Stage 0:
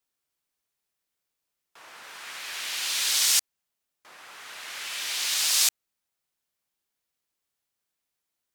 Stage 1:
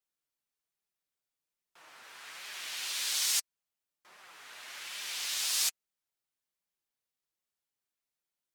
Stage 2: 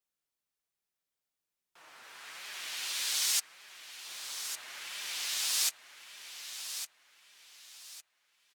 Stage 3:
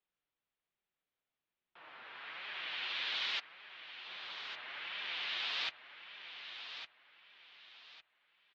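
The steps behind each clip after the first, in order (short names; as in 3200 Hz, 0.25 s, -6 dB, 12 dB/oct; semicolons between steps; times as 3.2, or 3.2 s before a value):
flange 1.2 Hz, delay 4.6 ms, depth 4 ms, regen -26%; gain -4 dB
feedback echo 1.157 s, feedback 31%, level -9.5 dB
steep low-pass 3600 Hz 36 dB/oct; gain +1.5 dB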